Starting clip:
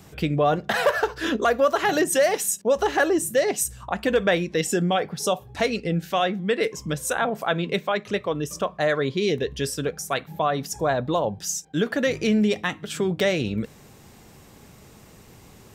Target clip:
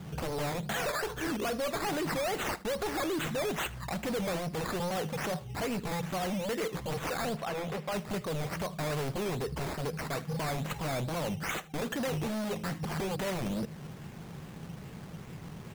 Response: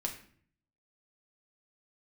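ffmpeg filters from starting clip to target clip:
-filter_complex "[0:a]asoftclip=type=hard:threshold=0.0631,acompressor=threshold=0.02:ratio=2.5,equalizer=f=160:t=o:w=0.57:g=12.5,acrusher=samples=12:mix=1:aa=0.000001:lfo=1:lforange=7.2:lforate=2.4,aeval=exprs='0.0376*(abs(mod(val(0)/0.0376+3,4)-2)-1)':c=same,asettb=1/sr,asplit=3[s0][s1][s2];[s0]atrim=end=7.364[s3];[s1]atrim=start=7.36:end=7.92,asetpts=PTS-STARTPTS,afade=t=in:d=0.004:c=qsin,afade=t=out:st=0.556:d=0.004:c=qsin,bass=f=250:g=-6,treble=f=4000:g=-7[s4];[s2]atrim=start=7.916[s5];[s3][s4]acrossfade=d=0.004:c1=hsin:c2=qsin[s6];[s6][s5]acrossfade=d=0.004:c1=qsin:c2=hsin,aecho=1:1:79:0.0944"

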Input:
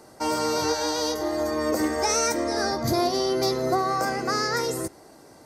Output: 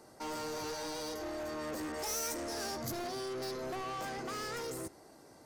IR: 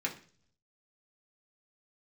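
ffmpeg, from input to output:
-filter_complex "[0:a]asoftclip=type=tanh:threshold=0.0335,asettb=1/sr,asplit=3[s0][s1][s2];[s0]atrim=end=1.924[s3];[s1]atrim=start=1.92:end=2.92,asetpts=PTS-STARTPTS,afade=t=in:d=0.004:c=qsin,afade=t=out:st=0.996:d=0.004:c=qsin,adynamicequalizer=threshold=0.00355:dfrequency=5500:dqfactor=0.7:tfrequency=5500:tqfactor=0.7:attack=5:release=100:ratio=0.375:range=4:mode=boostabove:tftype=highshelf[s4];[s2]atrim=start=2.916[s5];[s3][s4]acrossfade=d=0.004:c1=hsin:c2=qsin[s6];[s6][s5]acrossfade=d=0.004:c1=qsin:c2=hsin,volume=0.422"

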